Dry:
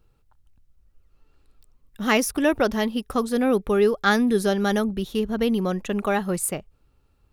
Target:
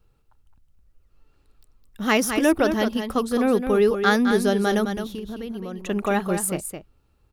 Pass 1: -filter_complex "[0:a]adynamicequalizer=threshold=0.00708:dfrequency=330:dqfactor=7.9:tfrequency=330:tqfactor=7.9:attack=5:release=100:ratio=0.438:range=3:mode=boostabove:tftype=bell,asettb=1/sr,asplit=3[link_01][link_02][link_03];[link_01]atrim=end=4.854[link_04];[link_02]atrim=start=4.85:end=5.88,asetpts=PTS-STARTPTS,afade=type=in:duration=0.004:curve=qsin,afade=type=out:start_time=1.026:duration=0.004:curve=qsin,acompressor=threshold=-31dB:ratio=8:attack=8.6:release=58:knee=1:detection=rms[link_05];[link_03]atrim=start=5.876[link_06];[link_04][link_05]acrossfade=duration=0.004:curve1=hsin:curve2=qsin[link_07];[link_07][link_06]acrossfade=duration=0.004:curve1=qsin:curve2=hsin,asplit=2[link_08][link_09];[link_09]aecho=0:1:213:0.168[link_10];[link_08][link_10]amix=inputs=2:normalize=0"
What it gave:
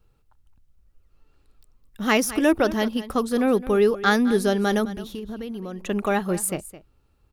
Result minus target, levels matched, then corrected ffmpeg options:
echo-to-direct −8 dB
-filter_complex "[0:a]adynamicequalizer=threshold=0.00708:dfrequency=330:dqfactor=7.9:tfrequency=330:tqfactor=7.9:attack=5:release=100:ratio=0.438:range=3:mode=boostabove:tftype=bell,asettb=1/sr,asplit=3[link_01][link_02][link_03];[link_01]atrim=end=4.854[link_04];[link_02]atrim=start=4.85:end=5.88,asetpts=PTS-STARTPTS,afade=type=in:duration=0.004:curve=qsin,afade=type=out:start_time=1.026:duration=0.004:curve=qsin,acompressor=threshold=-31dB:ratio=8:attack=8.6:release=58:knee=1:detection=rms[link_05];[link_03]atrim=start=5.876[link_06];[link_04][link_05]acrossfade=duration=0.004:curve1=hsin:curve2=qsin[link_07];[link_07][link_06]acrossfade=duration=0.004:curve1=qsin:curve2=hsin,asplit=2[link_08][link_09];[link_09]aecho=0:1:213:0.422[link_10];[link_08][link_10]amix=inputs=2:normalize=0"

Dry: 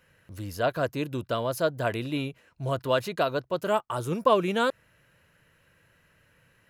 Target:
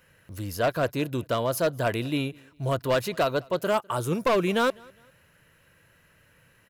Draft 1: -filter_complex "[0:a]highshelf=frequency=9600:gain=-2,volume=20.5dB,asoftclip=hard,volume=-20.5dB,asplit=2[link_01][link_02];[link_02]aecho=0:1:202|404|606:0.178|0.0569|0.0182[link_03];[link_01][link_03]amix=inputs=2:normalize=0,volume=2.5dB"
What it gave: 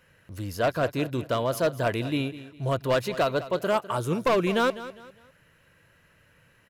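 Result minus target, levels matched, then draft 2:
echo-to-direct +11.5 dB; 8,000 Hz band −3.0 dB
-filter_complex "[0:a]highshelf=frequency=9600:gain=6,volume=20.5dB,asoftclip=hard,volume=-20.5dB,asplit=2[link_01][link_02];[link_02]aecho=0:1:202|404:0.0473|0.0151[link_03];[link_01][link_03]amix=inputs=2:normalize=0,volume=2.5dB"

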